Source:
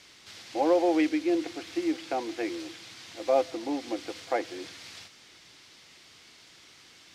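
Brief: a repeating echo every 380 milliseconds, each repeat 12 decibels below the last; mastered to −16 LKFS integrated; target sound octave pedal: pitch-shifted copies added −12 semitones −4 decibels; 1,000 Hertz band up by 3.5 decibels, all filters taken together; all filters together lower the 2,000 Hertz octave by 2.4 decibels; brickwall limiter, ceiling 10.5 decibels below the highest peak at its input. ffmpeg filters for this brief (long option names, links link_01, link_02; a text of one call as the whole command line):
ffmpeg -i in.wav -filter_complex "[0:a]equalizer=frequency=1000:width_type=o:gain=6,equalizer=frequency=2000:width_type=o:gain=-4.5,alimiter=limit=-20.5dB:level=0:latency=1,aecho=1:1:380|760|1140:0.251|0.0628|0.0157,asplit=2[link_01][link_02];[link_02]asetrate=22050,aresample=44100,atempo=2,volume=-4dB[link_03];[link_01][link_03]amix=inputs=2:normalize=0,volume=15dB" out.wav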